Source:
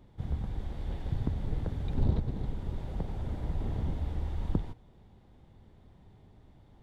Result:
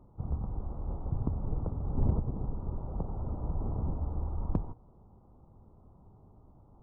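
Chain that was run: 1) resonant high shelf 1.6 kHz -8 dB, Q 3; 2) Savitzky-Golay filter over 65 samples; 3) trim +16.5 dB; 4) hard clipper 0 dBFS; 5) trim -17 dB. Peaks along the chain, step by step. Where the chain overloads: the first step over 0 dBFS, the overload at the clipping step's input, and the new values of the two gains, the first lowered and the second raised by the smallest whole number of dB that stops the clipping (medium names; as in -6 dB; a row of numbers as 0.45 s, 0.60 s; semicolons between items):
-13.5 dBFS, -13.5 dBFS, +3.0 dBFS, 0.0 dBFS, -17.0 dBFS; step 3, 3.0 dB; step 3 +13.5 dB, step 5 -14 dB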